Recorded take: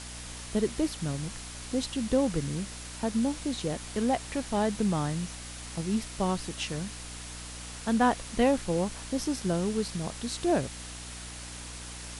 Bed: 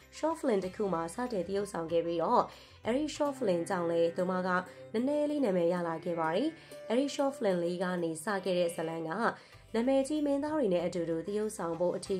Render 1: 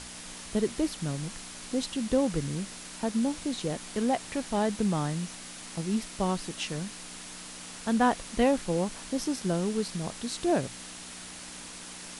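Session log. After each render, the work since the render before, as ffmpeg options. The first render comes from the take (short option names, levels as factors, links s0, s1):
-af "bandreject=f=60:t=h:w=6,bandreject=f=120:t=h:w=6"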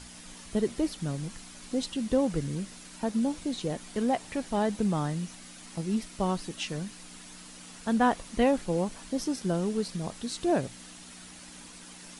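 -af "afftdn=nr=7:nf=-44"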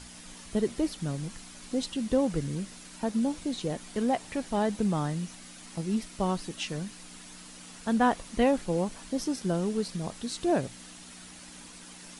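-af anull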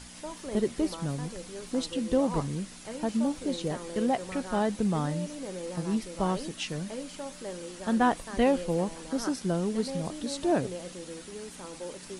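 -filter_complex "[1:a]volume=0.355[s0];[0:a][s0]amix=inputs=2:normalize=0"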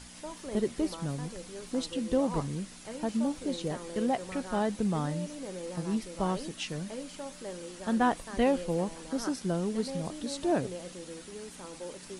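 -af "volume=0.794"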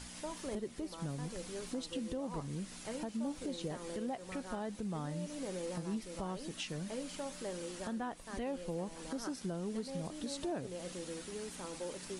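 -af "acompressor=threshold=0.0141:ratio=2,alimiter=level_in=1.88:limit=0.0631:level=0:latency=1:release=367,volume=0.531"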